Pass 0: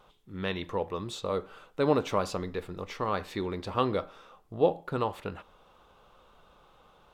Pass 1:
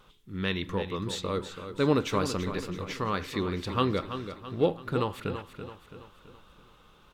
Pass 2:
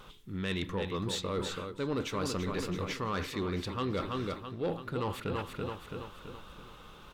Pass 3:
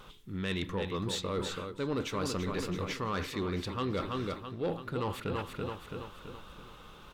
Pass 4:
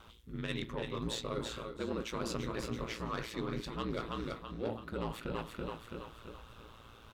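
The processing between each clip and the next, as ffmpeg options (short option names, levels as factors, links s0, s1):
-filter_complex "[0:a]equalizer=f=700:t=o:w=1.1:g=-11,asplit=2[s0][s1];[s1]aecho=0:1:332|664|996|1328|1660:0.316|0.152|0.0729|0.035|0.0168[s2];[s0][s2]amix=inputs=2:normalize=0,volume=1.68"
-af "areverse,acompressor=threshold=0.0141:ratio=4,areverse,asoftclip=type=tanh:threshold=0.0282,volume=2.11"
-af anull
-filter_complex "[0:a]asplit=2[s0][s1];[s1]adelay=17,volume=0.211[s2];[s0][s2]amix=inputs=2:normalize=0,aeval=exprs='val(0)*sin(2*PI*57*n/s)':c=same,aecho=1:1:358:0.211,volume=0.841"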